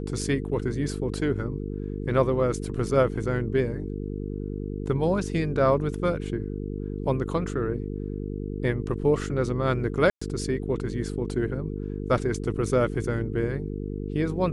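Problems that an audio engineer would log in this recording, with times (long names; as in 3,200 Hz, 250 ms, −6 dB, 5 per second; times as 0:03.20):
mains buzz 50 Hz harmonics 9 −32 dBFS
0:10.10–0:10.21: drop-out 115 ms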